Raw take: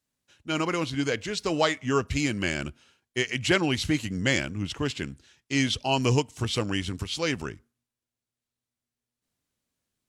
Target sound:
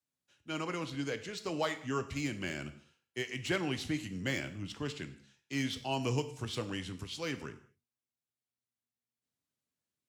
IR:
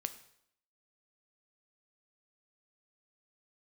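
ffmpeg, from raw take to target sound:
-filter_complex "[0:a]highpass=73,acrossover=split=150|770|2000[link_01][link_02][link_03][link_04];[link_04]asoftclip=type=tanh:threshold=-23.5dB[link_05];[link_01][link_02][link_03][link_05]amix=inputs=4:normalize=0[link_06];[1:a]atrim=start_sample=2205,afade=type=out:start_time=0.28:duration=0.01,atrim=end_sample=12789[link_07];[link_06][link_07]afir=irnorm=-1:irlink=0,volume=-8.5dB"

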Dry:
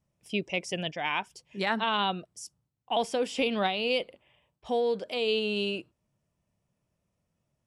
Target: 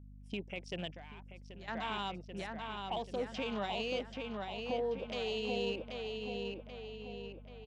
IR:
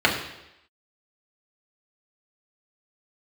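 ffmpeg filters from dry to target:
-filter_complex "[0:a]aresample=22050,aresample=44100,afwtdn=0.0112,alimiter=level_in=2dB:limit=-24dB:level=0:latency=1:release=270,volume=-2dB,asplit=2[link_01][link_02];[link_02]adelay=784,lowpass=frequency=4500:poles=1,volume=-3.5dB,asplit=2[link_03][link_04];[link_04]adelay=784,lowpass=frequency=4500:poles=1,volume=0.52,asplit=2[link_05][link_06];[link_06]adelay=784,lowpass=frequency=4500:poles=1,volume=0.52,asplit=2[link_07][link_08];[link_08]adelay=784,lowpass=frequency=4500:poles=1,volume=0.52,asplit=2[link_09][link_10];[link_10]adelay=784,lowpass=frequency=4500:poles=1,volume=0.52,asplit=2[link_11][link_12];[link_12]adelay=784,lowpass=frequency=4500:poles=1,volume=0.52,asplit=2[link_13][link_14];[link_14]adelay=784,lowpass=frequency=4500:poles=1,volume=0.52[link_15];[link_01][link_03][link_05][link_07][link_09][link_11][link_13][link_15]amix=inputs=8:normalize=0,asettb=1/sr,asplit=3[link_16][link_17][link_18];[link_16]atrim=end=0.914[link_19];[link_17]atrim=start=0.91:end=1.68,asetpts=PTS-STARTPTS,afade=type=in:duration=0.004:curve=qsin,afade=type=out:start_time=0.766:duration=0.004:curve=qsin,acompressor=threshold=-50dB:ratio=4[link_20];[link_18]atrim=start=1.676[link_21];[link_19][link_20]acrossfade=duration=0.004:curve1=hsin:curve2=qsin[link_22];[link_22][link_21]acrossfade=duration=0.004:curve1=qsin:curve2=hsin,aeval=exprs='val(0)+0.00355*(sin(2*PI*50*n/s)+sin(2*PI*2*50*n/s)/2+sin(2*PI*3*50*n/s)/3+sin(2*PI*4*50*n/s)/4+sin(2*PI*5*50*n/s)/5)':channel_layout=same,volume=-2.5dB"

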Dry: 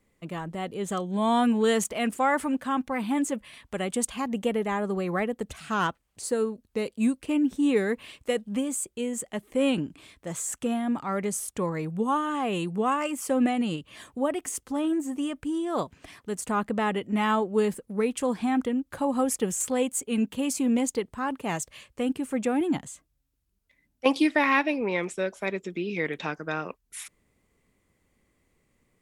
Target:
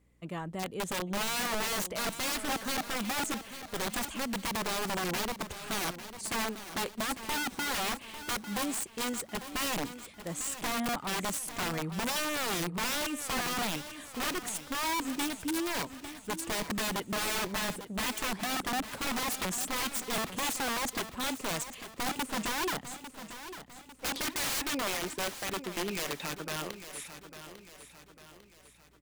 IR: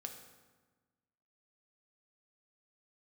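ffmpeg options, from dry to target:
-af "aeval=exprs='(mod(15.8*val(0)+1,2)-1)/15.8':channel_layout=same,aecho=1:1:849|1698|2547|3396|4245:0.251|0.116|0.0532|0.0244|0.0112,aeval=exprs='val(0)+0.000631*(sin(2*PI*60*n/s)+sin(2*PI*2*60*n/s)/2+sin(2*PI*3*60*n/s)/3+sin(2*PI*4*60*n/s)/4+sin(2*PI*5*60*n/s)/5)':channel_layout=same,volume=-3.5dB"

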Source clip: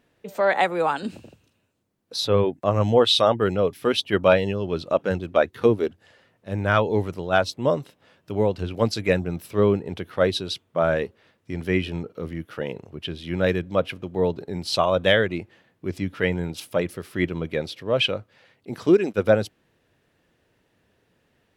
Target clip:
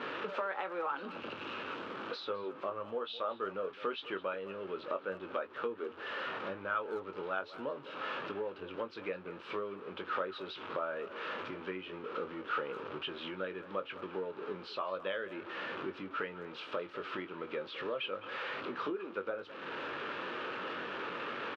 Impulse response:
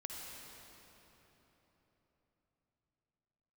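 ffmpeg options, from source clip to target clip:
-filter_complex "[0:a]aeval=exprs='val(0)+0.5*0.0299*sgn(val(0))':channel_layout=same,acompressor=threshold=-32dB:ratio=8,highpass=410,equalizer=frequency=710:width_type=q:width=4:gain=-9,equalizer=frequency=1300:width_type=q:width=4:gain=7,equalizer=frequency=2000:width_type=q:width=4:gain=-8,lowpass=frequency=2900:width=0.5412,lowpass=frequency=2900:width=1.3066,asplit=2[link_01][link_02];[link_02]adelay=21,volume=-8.5dB[link_03];[link_01][link_03]amix=inputs=2:normalize=0,asplit=2[link_04][link_05];[link_05]adelay=210,highpass=300,lowpass=3400,asoftclip=type=hard:threshold=-28.5dB,volume=-15dB[link_06];[link_04][link_06]amix=inputs=2:normalize=0"

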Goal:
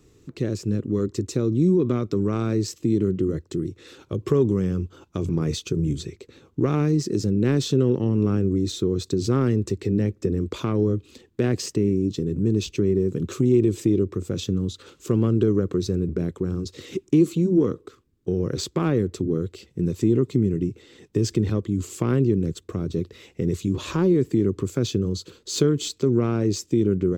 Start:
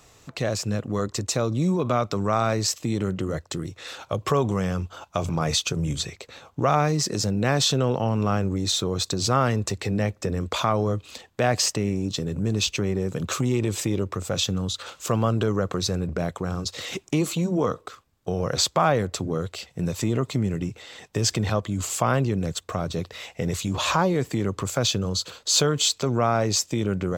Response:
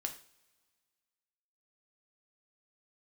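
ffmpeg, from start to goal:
-af "aeval=exprs='0.473*(cos(1*acos(clip(val(0)/0.473,-1,1)))-cos(1*PI/2))+0.0668*(cos(3*acos(clip(val(0)/0.473,-1,1)))-cos(3*PI/2))':channel_layout=same,lowshelf=frequency=500:width_type=q:width=3:gain=10.5,volume=-5dB"

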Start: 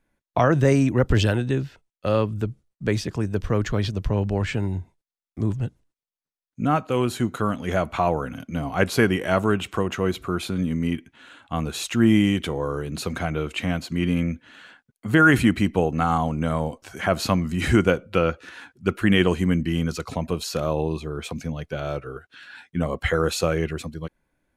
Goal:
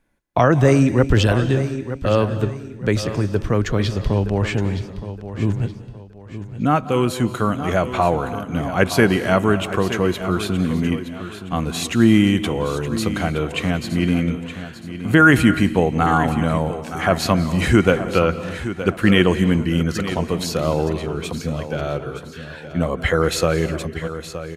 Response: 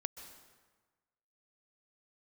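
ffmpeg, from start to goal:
-filter_complex "[0:a]aecho=1:1:919|1838|2757:0.251|0.0829|0.0274,asplit=2[link_01][link_02];[1:a]atrim=start_sample=2205,afade=type=out:start_time=0.31:duration=0.01,atrim=end_sample=14112,asetrate=32634,aresample=44100[link_03];[link_02][link_03]afir=irnorm=-1:irlink=0,volume=2dB[link_04];[link_01][link_04]amix=inputs=2:normalize=0,volume=-3dB"

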